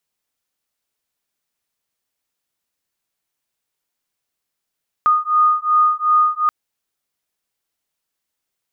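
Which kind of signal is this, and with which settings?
beating tones 1230 Hz, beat 2.7 Hz, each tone -15.5 dBFS 1.43 s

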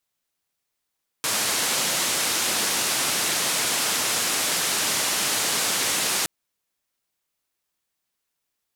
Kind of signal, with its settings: noise band 150–10000 Hz, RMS -24 dBFS 5.02 s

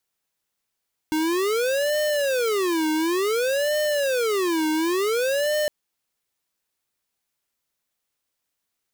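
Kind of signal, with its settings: siren wail 310–605 Hz 0.56/s square -22.5 dBFS 4.56 s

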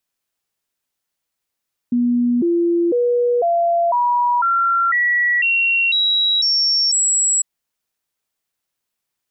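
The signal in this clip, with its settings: stepped sine 242 Hz up, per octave 2, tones 11, 0.50 s, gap 0.00 s -13.5 dBFS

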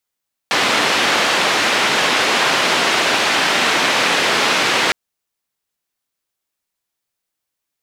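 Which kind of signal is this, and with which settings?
noise band 240–3100 Hz, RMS -16 dBFS 4.41 s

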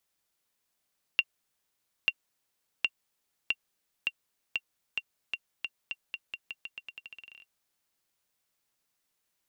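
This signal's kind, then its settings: bouncing ball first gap 0.89 s, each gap 0.86, 2760 Hz, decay 48 ms -11 dBFS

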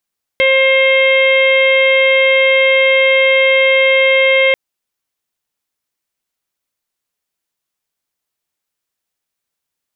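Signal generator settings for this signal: steady additive tone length 4.14 s, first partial 532 Hz, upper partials -16/-16.5/-0.5/-10.5/-9/-20 dB, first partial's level -11 dB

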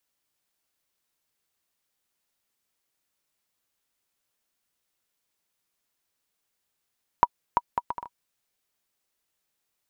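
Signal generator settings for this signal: bouncing ball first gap 0.34 s, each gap 0.61, 963 Hz, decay 42 ms -4.5 dBFS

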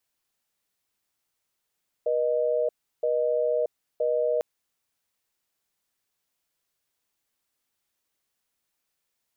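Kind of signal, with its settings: cadence 482 Hz, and 617 Hz, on 0.63 s, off 0.34 s, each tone -24.5 dBFS 2.35 s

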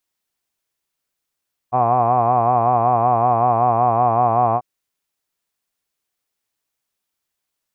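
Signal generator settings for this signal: formant-synthesis vowel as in hod, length 2.89 s, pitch 121 Hz, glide -0.5 st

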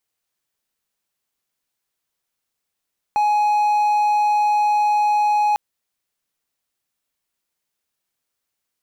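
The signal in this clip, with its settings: tone triangle 837 Hz -12.5 dBFS 2.40 s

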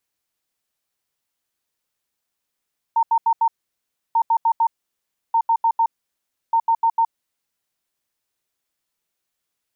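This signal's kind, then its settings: beep pattern sine 914 Hz, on 0.07 s, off 0.08 s, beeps 4, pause 0.67 s, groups 4, -13.5 dBFS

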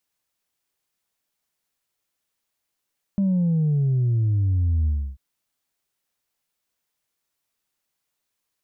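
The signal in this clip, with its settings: sub drop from 200 Hz, over 1.99 s, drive 1 dB, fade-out 0.30 s, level -18 dB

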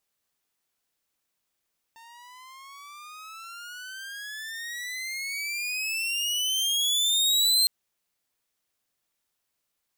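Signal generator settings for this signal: gliding synth tone saw, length 5.71 s, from 905 Hz, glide +26.5 st, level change +30 dB, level -15 dB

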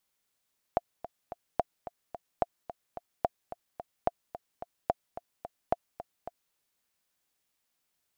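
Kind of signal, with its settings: metronome 218 bpm, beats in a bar 3, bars 7, 697 Hz, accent 14 dB -11.5 dBFS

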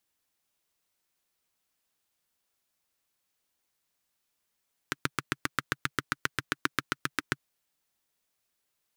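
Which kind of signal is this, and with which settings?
single-cylinder engine model, steady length 2.52 s, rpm 900, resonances 140/290/1400 Hz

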